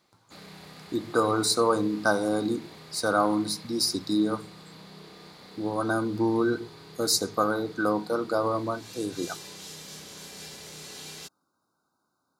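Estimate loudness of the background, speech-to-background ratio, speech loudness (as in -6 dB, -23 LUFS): -44.5 LUFS, 17.5 dB, -27.0 LUFS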